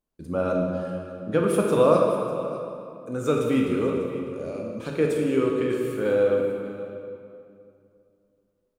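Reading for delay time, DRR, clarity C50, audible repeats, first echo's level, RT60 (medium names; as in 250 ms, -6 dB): 598 ms, -0.5 dB, 1.0 dB, 1, -16.0 dB, 2.5 s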